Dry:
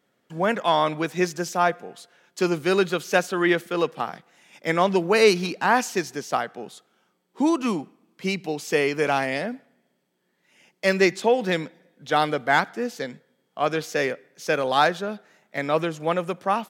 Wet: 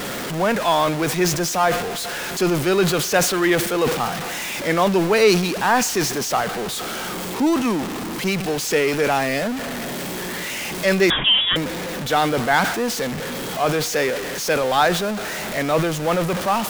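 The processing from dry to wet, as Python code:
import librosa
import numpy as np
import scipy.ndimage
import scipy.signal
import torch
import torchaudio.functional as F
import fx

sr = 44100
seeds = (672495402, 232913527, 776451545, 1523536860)

y = x + 0.5 * 10.0 ** (-22.0 / 20.0) * np.sign(x)
y = fx.freq_invert(y, sr, carrier_hz=3600, at=(11.1, 11.56))
y = fx.sustainer(y, sr, db_per_s=64.0)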